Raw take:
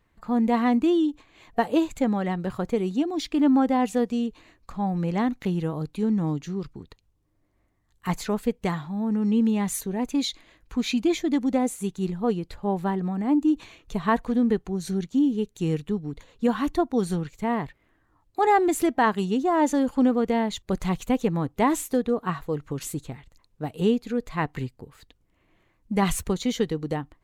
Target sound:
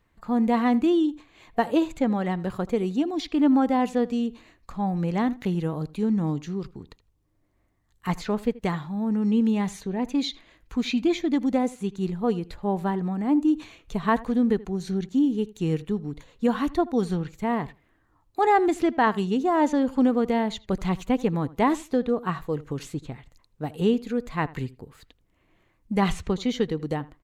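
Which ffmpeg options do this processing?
-filter_complex "[0:a]acrossover=split=5600[a][b];[a]asplit=2[c][d];[d]adelay=81,lowpass=f=3.5k:p=1,volume=-20dB,asplit=2[e][f];[f]adelay=81,lowpass=f=3.5k:p=1,volume=0.17[g];[c][e][g]amix=inputs=3:normalize=0[h];[b]acompressor=threshold=-54dB:ratio=6[i];[h][i]amix=inputs=2:normalize=0"

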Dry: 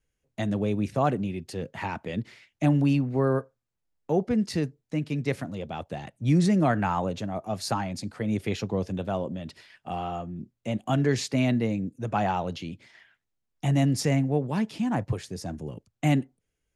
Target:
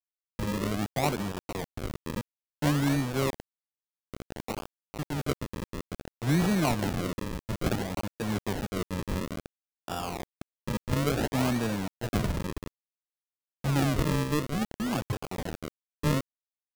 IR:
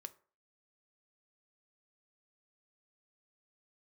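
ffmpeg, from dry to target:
-filter_complex "[0:a]crystalizer=i=3:c=0,acrusher=bits=4:mix=0:aa=0.000001,asettb=1/sr,asplit=3[a][b][c];[a]atrim=end=3.304[d];[b]atrim=start=3.3:end=4.99,asetpts=PTS-STARTPTS,afade=t=in:d=0.004:c=qsin,afade=t=out:st=1.686:d=0.004:c=qsin,aderivative[e];[c]atrim=start=4.986[f];[d][e]acrossfade=d=0.004:c1=hsin:c2=qsin[g];[g][f]acrossfade=d=0.004:c1=qsin:c2=hsin,acrusher=samples=41:mix=1:aa=0.000001:lfo=1:lforange=41:lforate=0.58,volume=-4dB"

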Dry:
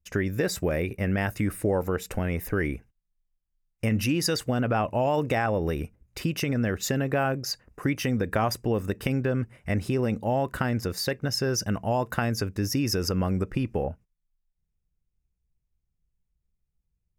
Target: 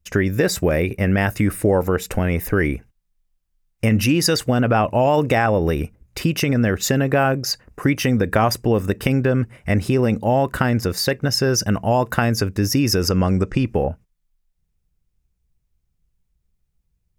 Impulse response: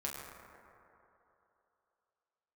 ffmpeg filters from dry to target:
-filter_complex "[0:a]asettb=1/sr,asplit=3[a][b][c];[a]atrim=end=13.104[d];[b]atrim=start=13.1:end=13.65,asetpts=PTS-STARTPTS,afade=t=in:d=0.004:c=qsin,afade=t=out:st=0.546:d=0.004:c=qsin,lowpass=f=7k:t=q:w=1.7[e];[c]atrim=start=13.646[f];[d][e]acrossfade=d=0.004:c1=hsin:c2=qsin[g];[g][f]acrossfade=d=0.004:c1=qsin:c2=hsin,volume=8dB"

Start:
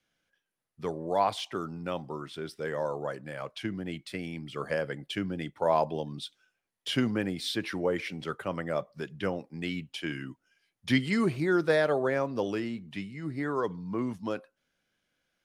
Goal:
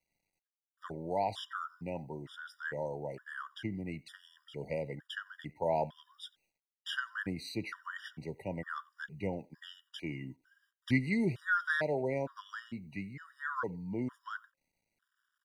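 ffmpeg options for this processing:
-filter_complex "[0:a]lowshelf=f=150:g=10.5,acrusher=bits=11:mix=0:aa=0.000001,equalizer=f=1.5k:t=o:w=0.72:g=11,asplit=2[a][b];[b]adelay=90,highpass=300,lowpass=3.4k,asoftclip=type=hard:threshold=-20dB,volume=-23dB[c];[a][c]amix=inputs=2:normalize=0,afftfilt=real='re*gt(sin(2*PI*1.1*pts/sr)*(1-2*mod(floor(b*sr/1024/960),2)),0)':imag='im*gt(sin(2*PI*1.1*pts/sr)*(1-2*mod(floor(b*sr/1024/960),2)),0)':win_size=1024:overlap=0.75,volume=-7dB"

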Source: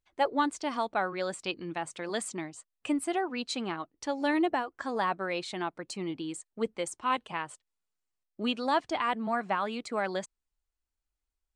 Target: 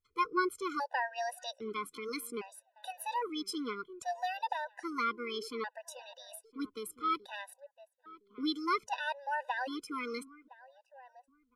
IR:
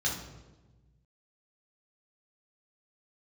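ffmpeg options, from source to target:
-filter_complex "[0:a]asplit=2[a][b];[b]adelay=1014,lowpass=f=1.1k:p=1,volume=-18.5dB,asplit=2[c][d];[d]adelay=1014,lowpass=f=1.1k:p=1,volume=0.23[e];[a][c][e]amix=inputs=3:normalize=0,asetrate=55563,aresample=44100,atempo=0.793701,afftfilt=real='re*gt(sin(2*PI*0.62*pts/sr)*(1-2*mod(floor(b*sr/1024/500),2)),0)':imag='im*gt(sin(2*PI*0.62*pts/sr)*(1-2*mod(floor(b*sr/1024/500),2)),0)':win_size=1024:overlap=0.75,volume=-2dB"

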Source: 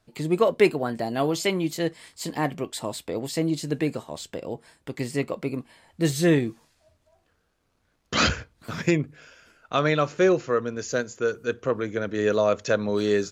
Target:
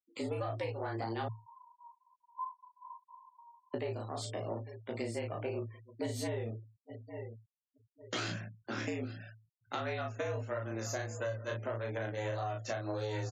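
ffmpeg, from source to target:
-filter_complex "[0:a]aeval=exprs='if(lt(val(0),0),0.447*val(0),val(0))':c=same,flanger=delay=15.5:depth=5.1:speed=1.6,asplit=2[a][b];[b]adelay=35,volume=-3dB[c];[a][c]amix=inputs=2:normalize=0,aecho=1:1:851|1702|2553:0.0708|0.0269|0.0102,agate=range=-10dB:threshold=-50dB:ratio=16:detection=peak,asettb=1/sr,asplit=3[d][e][f];[d]atrim=end=1.284[g];[e]atrim=start=1.28:end=3.74,asetpts=PTS-STARTPTS,afade=t=in:d=0.004:c=qsin,afade=t=out:st=2.456:d=0.004:c=qsin,asuperpass=centerf=880:order=12:qfactor=7.2[h];[f]atrim=start=3.736[i];[g][h]acrossfade=d=0.004:c1=hsin:c2=qsin[j];[j][i]acrossfade=d=0.004:c1=qsin:c2=hsin,alimiter=limit=-18.5dB:level=0:latency=1:release=275,afreqshift=110,afftfilt=real='re*gte(hypot(re,im),0.00355)':imag='im*gte(hypot(re,im),0.00355)':win_size=1024:overlap=0.75,acompressor=threshold=-36dB:ratio=4,volume=1dB"

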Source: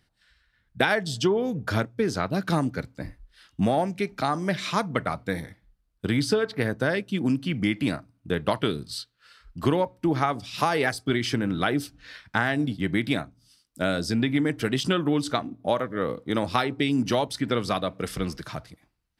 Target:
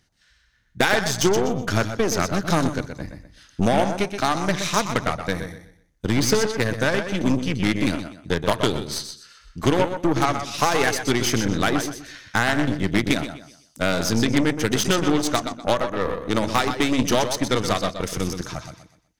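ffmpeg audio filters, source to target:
-filter_complex "[0:a]equalizer=f=6.3k:w=4.2:g=13.5,asoftclip=type=hard:threshold=-11dB,asplit=2[a][b];[b]aecho=0:1:124|248|372|496:0.447|0.13|0.0376|0.0109[c];[a][c]amix=inputs=2:normalize=0,aeval=exprs='0.398*(cos(1*acos(clip(val(0)/0.398,-1,1)))-cos(1*PI/2))+0.0794*(cos(6*acos(clip(val(0)/0.398,-1,1)))-cos(6*PI/2))+0.1*(cos(8*acos(clip(val(0)/0.398,-1,1)))-cos(8*PI/2))':c=same,volume=2dB"

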